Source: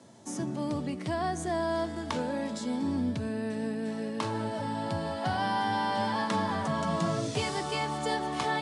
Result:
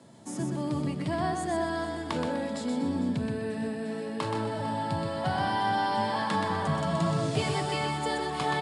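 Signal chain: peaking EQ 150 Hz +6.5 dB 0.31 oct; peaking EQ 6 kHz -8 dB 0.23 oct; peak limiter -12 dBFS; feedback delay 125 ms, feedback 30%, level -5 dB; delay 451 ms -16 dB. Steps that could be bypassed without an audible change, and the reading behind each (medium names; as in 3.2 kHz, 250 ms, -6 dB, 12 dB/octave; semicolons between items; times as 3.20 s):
peak limiter -12 dBFS: peak at its input -16.0 dBFS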